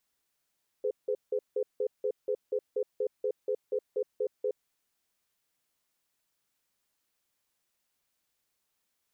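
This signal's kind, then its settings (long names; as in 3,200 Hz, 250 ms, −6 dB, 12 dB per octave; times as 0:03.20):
tone pair in a cadence 421 Hz, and 505 Hz, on 0.07 s, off 0.17 s, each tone −29.5 dBFS 3.83 s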